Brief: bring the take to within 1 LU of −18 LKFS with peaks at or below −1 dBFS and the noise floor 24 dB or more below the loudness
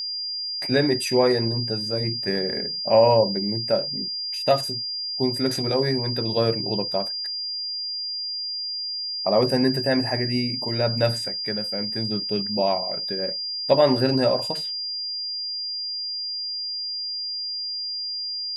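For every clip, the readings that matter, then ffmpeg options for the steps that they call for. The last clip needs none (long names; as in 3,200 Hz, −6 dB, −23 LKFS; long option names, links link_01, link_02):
interfering tone 4,800 Hz; level of the tone −27 dBFS; integrated loudness −23.5 LKFS; sample peak −5.0 dBFS; target loudness −18.0 LKFS
→ -af "bandreject=frequency=4800:width=30"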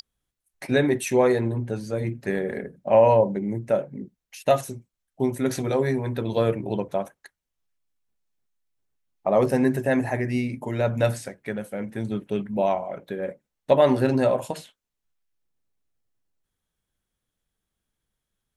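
interfering tone none found; integrated loudness −24.0 LKFS; sample peak −5.5 dBFS; target loudness −18.0 LKFS
→ -af "volume=6dB,alimiter=limit=-1dB:level=0:latency=1"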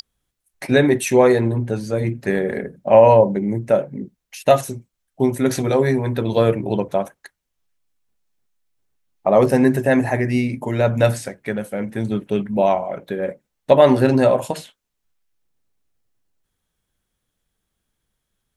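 integrated loudness −18.0 LKFS; sample peak −1.0 dBFS; background noise floor −78 dBFS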